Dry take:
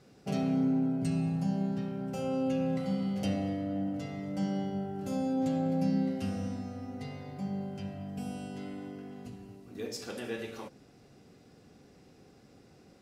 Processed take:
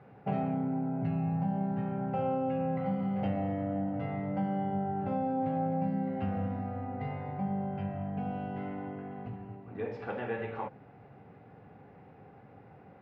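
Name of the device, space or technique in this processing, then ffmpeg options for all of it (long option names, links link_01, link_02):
bass amplifier: -af "acompressor=threshold=-33dB:ratio=3,highpass=84,equalizer=frequency=110:width_type=q:width=4:gain=5,equalizer=frequency=240:width_type=q:width=4:gain=-5,equalizer=frequency=340:width_type=q:width=4:gain=-7,equalizer=frequency=840:width_type=q:width=4:gain=9,lowpass=frequency=2200:width=0.5412,lowpass=frequency=2200:width=1.3066,volume=5dB"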